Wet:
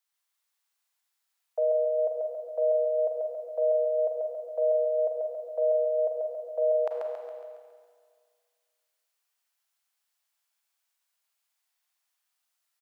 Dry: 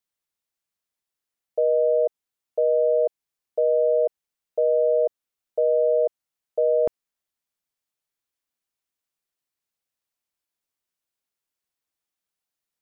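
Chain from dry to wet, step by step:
high-pass filter 710 Hz 24 dB per octave
on a send: repeating echo 138 ms, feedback 53%, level −3 dB
on the sum: four-comb reverb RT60 1.9 s, combs from 33 ms, DRR 2 dB
level +2.5 dB

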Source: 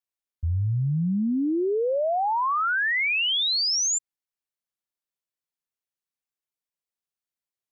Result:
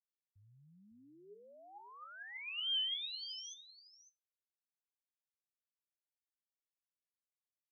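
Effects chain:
source passing by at 0:02.76, 58 m/s, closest 4.6 metres
tuned comb filter 410 Hz, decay 0.22 s, harmonics all, mix 70%
on a send: single-tap delay 553 ms −14.5 dB

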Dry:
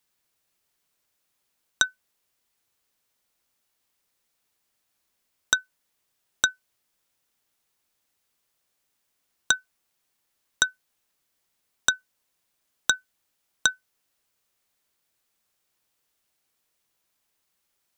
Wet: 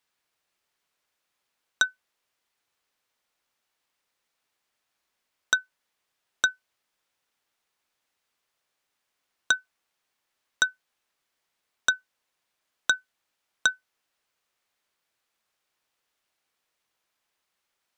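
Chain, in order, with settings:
mid-hump overdrive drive 7 dB, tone 2,900 Hz, clips at −2 dBFS
level −1 dB

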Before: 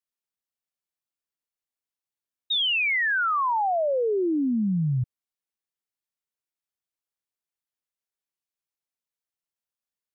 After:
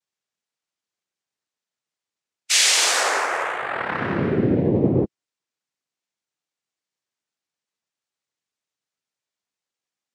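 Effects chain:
phase-vocoder pitch shift with formants kept −1.5 semitones
cochlear-implant simulation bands 3
tape wow and flutter 26 cents
level +8.5 dB

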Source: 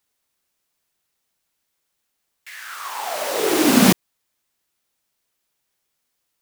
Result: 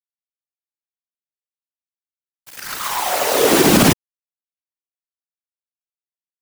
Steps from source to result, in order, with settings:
bit reduction 5 bits
random phases in short frames
boost into a limiter +7 dB
level −1 dB

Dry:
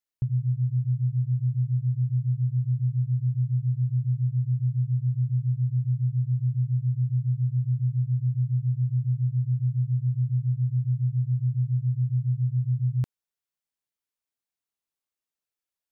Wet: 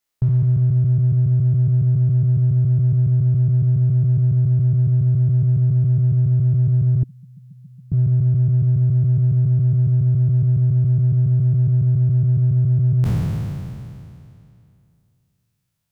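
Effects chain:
peak hold with a decay on every bin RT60 2.64 s
0:07.03–0:07.92: Butterworth high-pass 220 Hz 36 dB per octave
in parallel at −10 dB: hard clipping −28 dBFS, distortion −10 dB
on the sum: level +6 dB

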